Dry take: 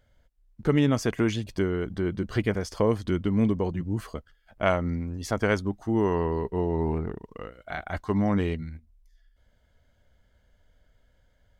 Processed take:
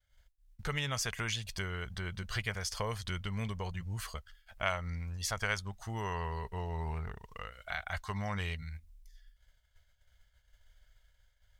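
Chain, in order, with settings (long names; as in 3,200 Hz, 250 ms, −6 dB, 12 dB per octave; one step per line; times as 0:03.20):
downward expander −56 dBFS
guitar amp tone stack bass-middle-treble 10-0-10
downward compressor 1.5 to 1, threshold −51 dBFS, peak gain reduction 8.5 dB
level +9 dB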